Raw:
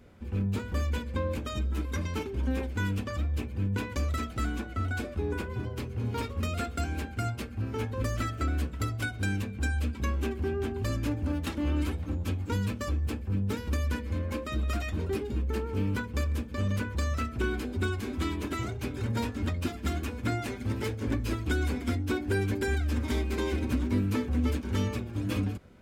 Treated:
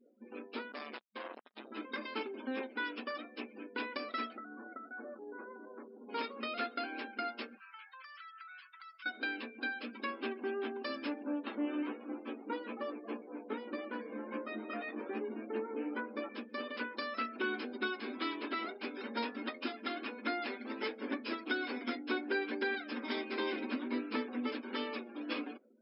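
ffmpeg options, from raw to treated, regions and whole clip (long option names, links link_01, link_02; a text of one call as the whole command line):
ffmpeg -i in.wav -filter_complex "[0:a]asettb=1/sr,asplit=3[link_01][link_02][link_03];[link_01]atrim=end=0.724[link_04];[link_02]atrim=start=0.72:end=1.72,asetpts=PTS-STARTPTS,afade=type=in:duration=0.004:curve=qsin,afade=type=out:start_time=0.996:duration=0.004:curve=qsin,asoftclip=type=hard:threshold=-25dB,acrusher=bits=3:mix=0:aa=0.5[link_05];[link_03]atrim=start=1.716[link_06];[link_04][link_05]acrossfade=duration=0.004:curve1=hsin:curve2=qsin[link_07];[link_07][link_06]acrossfade=duration=0.004:curve1=qsin:curve2=hsin,asettb=1/sr,asplit=3[link_08][link_09][link_10];[link_08]atrim=end=4.374[link_11];[link_09]atrim=start=4.37:end=6.09,asetpts=PTS-STARTPTS,afade=type=in:duration=0.004:curve=qsin,afade=type=out:start_time=1.716:duration=0.004:curve=qsin,lowpass=frequency=1700:width=0.5412,lowpass=frequency=1700:width=1.3066,acompressor=threshold=-35dB:ratio=10:attack=3.2:release=140:knee=1:detection=peak[link_12];[link_10]atrim=start=6.086[link_13];[link_11][link_12]acrossfade=duration=0.004:curve1=hsin:curve2=qsin[link_14];[link_14][link_13]acrossfade=duration=0.004:curve1=qsin:curve2=hsin,asettb=1/sr,asplit=3[link_15][link_16][link_17];[link_15]atrim=end=7.574[link_18];[link_16]atrim=start=7.57:end=9.06,asetpts=PTS-STARTPTS,afade=type=in:duration=0.004:curve=qsin,afade=type=out:start_time=1.486:duration=0.004:curve=qsin,highpass=frequency=1100:width=0.5412,highpass=frequency=1100:width=1.3066,acompressor=threshold=-46dB:ratio=10:attack=3.2:release=140:knee=1:detection=peak[link_19];[link_17]atrim=start=9.056[link_20];[link_18][link_19]acrossfade=duration=0.004:curve1=hsin:curve2=qsin[link_21];[link_21][link_20]acrossfade=duration=0.004:curve1=qsin:curve2=hsin,asettb=1/sr,asplit=3[link_22][link_23][link_24];[link_22]atrim=end=11.234[link_25];[link_23]atrim=start=11.23:end=16.29,asetpts=PTS-STARTPTS,afade=type=in:duration=0.004:curve=qsin,afade=type=out:start_time=5.056:duration=0.004:curve=qsin,lowpass=frequency=1200:poles=1,asplit=2[link_26][link_27];[link_27]adelay=14,volume=-4dB[link_28];[link_26][link_28]amix=inputs=2:normalize=0,atrim=end_sample=223146,asplit=7[link_29][link_30][link_31][link_32][link_33][link_34][link_35];[link_30]adelay=270,afreqshift=-130,volume=-10dB[link_36];[link_31]adelay=540,afreqshift=-260,volume=-15.2dB[link_37];[link_32]adelay=810,afreqshift=-390,volume=-20.4dB[link_38];[link_33]adelay=1080,afreqshift=-520,volume=-25.6dB[link_39];[link_34]adelay=1350,afreqshift=-650,volume=-30.8dB[link_40];[link_35]adelay=1620,afreqshift=-780,volume=-36dB[link_41];[link_29][link_36][link_37][link_38][link_39][link_40][link_41]amix=inputs=7:normalize=0,atrim=end_sample=223146[link_42];[link_24]atrim=start=16.286[link_43];[link_25][link_42]acrossfade=duration=0.004:curve1=hsin:curve2=qsin[link_44];[link_44][link_43]acrossfade=duration=0.004:curve1=qsin:curve2=hsin,afftfilt=real='re*between(b*sr/4096,210,5400)':imag='im*between(b*sr/4096,210,5400)':win_size=4096:overlap=0.75,afftdn=noise_reduction=35:noise_floor=-52,lowshelf=frequency=360:gain=-11" out.wav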